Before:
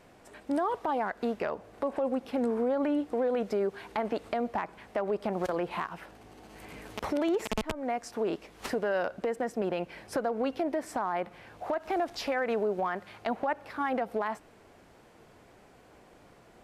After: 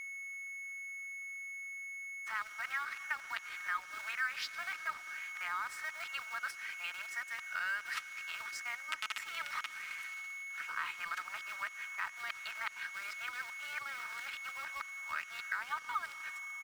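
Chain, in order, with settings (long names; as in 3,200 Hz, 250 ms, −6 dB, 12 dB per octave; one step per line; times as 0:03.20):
played backwards from end to start
in parallel at −5 dB: floating-point word with a short mantissa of 2 bits
on the sum: noise gate −47 dBFS, range −16 dB
elliptic high-pass filter 1,300 Hz, stop band 80 dB
high-shelf EQ 3,000 Hz −12 dB
comb filter 3.2 ms, depth 40%
on a send at −17.5 dB: convolution reverb RT60 3.4 s, pre-delay 73 ms
on the sum: steady tone 2,200 Hz −47 dBFS
downward compressor 2 to 1, threshold −47 dBFS, peak gain reduction 10 dB
dead-zone distortion −60 dBFS
level +8.5 dB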